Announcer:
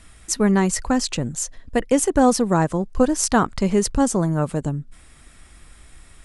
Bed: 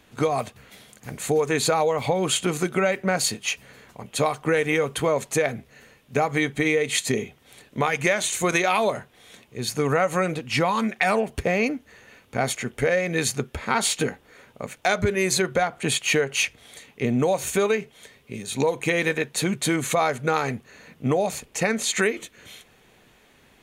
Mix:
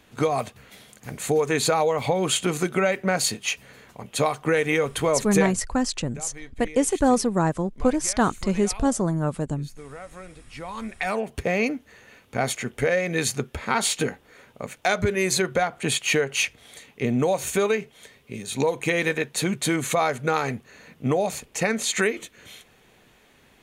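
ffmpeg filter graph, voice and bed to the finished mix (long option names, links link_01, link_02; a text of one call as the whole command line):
ffmpeg -i stem1.wav -i stem2.wav -filter_complex "[0:a]adelay=4850,volume=-3.5dB[link_01];[1:a]volume=18.5dB,afade=type=out:start_time=5.39:duration=0.23:silence=0.112202,afade=type=in:start_time=10.54:duration=1.06:silence=0.11885[link_02];[link_01][link_02]amix=inputs=2:normalize=0" out.wav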